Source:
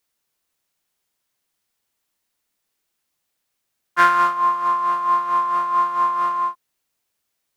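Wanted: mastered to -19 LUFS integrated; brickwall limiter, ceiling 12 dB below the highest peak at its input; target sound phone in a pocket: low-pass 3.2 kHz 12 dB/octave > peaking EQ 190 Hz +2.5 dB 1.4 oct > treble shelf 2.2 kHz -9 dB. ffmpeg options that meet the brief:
-af "alimiter=limit=0.2:level=0:latency=1,lowpass=3200,equalizer=f=190:t=o:w=1.4:g=2.5,highshelf=f=2200:g=-9,volume=1.58"

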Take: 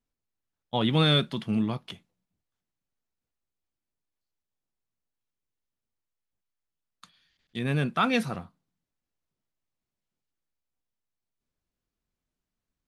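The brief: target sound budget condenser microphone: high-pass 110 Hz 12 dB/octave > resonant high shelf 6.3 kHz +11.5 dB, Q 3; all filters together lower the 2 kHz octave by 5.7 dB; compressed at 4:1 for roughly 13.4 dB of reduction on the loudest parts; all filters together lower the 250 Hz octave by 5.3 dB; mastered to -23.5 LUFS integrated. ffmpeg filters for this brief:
-af "equalizer=f=250:t=o:g=-6.5,equalizer=f=2000:t=o:g=-6.5,acompressor=threshold=0.0141:ratio=4,highpass=110,highshelf=f=6300:t=q:w=3:g=11.5,volume=8.41"

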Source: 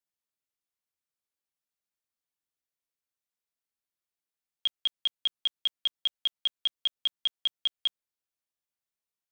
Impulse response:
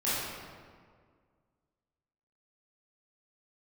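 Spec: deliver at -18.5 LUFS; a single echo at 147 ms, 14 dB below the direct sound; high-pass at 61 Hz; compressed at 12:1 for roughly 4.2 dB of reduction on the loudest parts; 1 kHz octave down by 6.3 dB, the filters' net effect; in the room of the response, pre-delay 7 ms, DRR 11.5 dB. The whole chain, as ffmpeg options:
-filter_complex "[0:a]highpass=61,equalizer=f=1000:t=o:g=-8.5,acompressor=threshold=0.0398:ratio=12,aecho=1:1:147:0.2,asplit=2[s0][s1];[1:a]atrim=start_sample=2205,adelay=7[s2];[s1][s2]afir=irnorm=-1:irlink=0,volume=0.0841[s3];[s0][s3]amix=inputs=2:normalize=0,volume=5.96"

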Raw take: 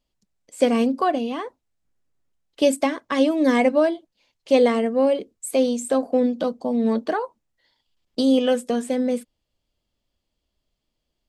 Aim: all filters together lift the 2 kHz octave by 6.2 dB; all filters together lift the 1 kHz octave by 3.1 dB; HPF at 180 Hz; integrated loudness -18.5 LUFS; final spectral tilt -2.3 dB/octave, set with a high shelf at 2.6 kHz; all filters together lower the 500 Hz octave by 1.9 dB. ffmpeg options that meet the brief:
-af "highpass=180,equalizer=f=500:t=o:g=-3.5,equalizer=f=1000:t=o:g=4,equalizer=f=2000:t=o:g=3,highshelf=f=2600:g=8,volume=1.5"

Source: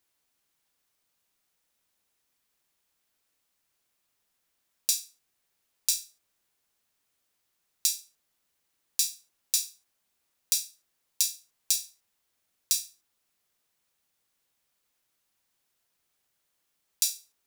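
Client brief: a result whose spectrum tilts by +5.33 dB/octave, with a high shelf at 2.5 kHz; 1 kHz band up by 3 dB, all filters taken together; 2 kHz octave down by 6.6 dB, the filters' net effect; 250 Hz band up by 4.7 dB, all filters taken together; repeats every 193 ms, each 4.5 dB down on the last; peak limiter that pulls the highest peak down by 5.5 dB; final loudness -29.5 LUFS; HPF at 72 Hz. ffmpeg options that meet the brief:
-af "highpass=72,equalizer=f=250:t=o:g=6,equalizer=f=1000:t=o:g=6.5,equalizer=f=2000:t=o:g=-7,highshelf=f=2500:g=-5.5,alimiter=limit=0.2:level=0:latency=1,aecho=1:1:193|386|579|772|965|1158|1351|1544|1737:0.596|0.357|0.214|0.129|0.0772|0.0463|0.0278|0.0167|0.01,volume=2.51"

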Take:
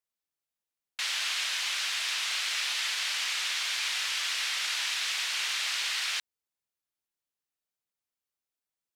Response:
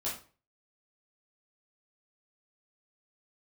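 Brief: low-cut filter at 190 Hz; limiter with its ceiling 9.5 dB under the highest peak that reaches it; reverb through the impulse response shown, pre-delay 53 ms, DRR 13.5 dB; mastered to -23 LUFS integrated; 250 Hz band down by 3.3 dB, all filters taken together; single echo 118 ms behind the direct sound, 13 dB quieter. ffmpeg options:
-filter_complex "[0:a]highpass=190,equalizer=f=250:t=o:g=-4,alimiter=level_in=1.5:limit=0.0631:level=0:latency=1,volume=0.668,aecho=1:1:118:0.224,asplit=2[s0][s1];[1:a]atrim=start_sample=2205,adelay=53[s2];[s1][s2]afir=irnorm=-1:irlink=0,volume=0.141[s3];[s0][s3]amix=inputs=2:normalize=0,volume=3.55"

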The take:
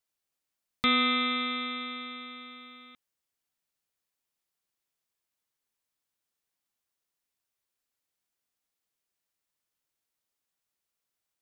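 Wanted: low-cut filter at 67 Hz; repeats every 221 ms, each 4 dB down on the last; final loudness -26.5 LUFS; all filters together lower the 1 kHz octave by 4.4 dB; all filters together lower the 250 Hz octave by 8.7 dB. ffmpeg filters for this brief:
-af "highpass=67,equalizer=f=250:t=o:g=-8.5,equalizer=f=1000:t=o:g=-6,aecho=1:1:221|442|663|884|1105|1326|1547|1768|1989:0.631|0.398|0.25|0.158|0.0994|0.0626|0.0394|0.0249|0.0157,volume=1.41"

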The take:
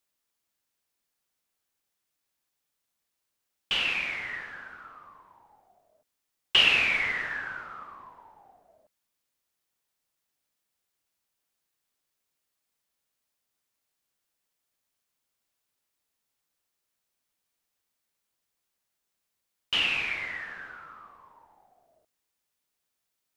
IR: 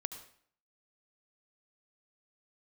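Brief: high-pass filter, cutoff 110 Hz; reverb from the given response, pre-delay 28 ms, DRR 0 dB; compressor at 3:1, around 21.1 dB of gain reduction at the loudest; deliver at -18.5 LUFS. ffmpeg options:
-filter_complex "[0:a]highpass=110,acompressor=threshold=0.00447:ratio=3,asplit=2[s0][s1];[1:a]atrim=start_sample=2205,adelay=28[s2];[s1][s2]afir=irnorm=-1:irlink=0,volume=1.12[s3];[s0][s3]amix=inputs=2:normalize=0,volume=15"

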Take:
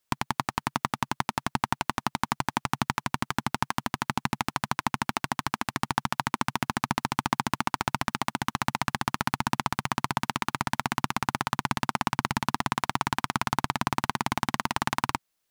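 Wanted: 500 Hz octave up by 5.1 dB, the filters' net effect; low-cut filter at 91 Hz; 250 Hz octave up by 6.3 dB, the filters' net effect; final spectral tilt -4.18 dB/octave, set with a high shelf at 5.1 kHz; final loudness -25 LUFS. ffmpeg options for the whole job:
-af "highpass=91,equalizer=f=250:t=o:g=6.5,equalizer=f=500:t=o:g=5.5,highshelf=f=5100:g=-6.5,volume=1.41"

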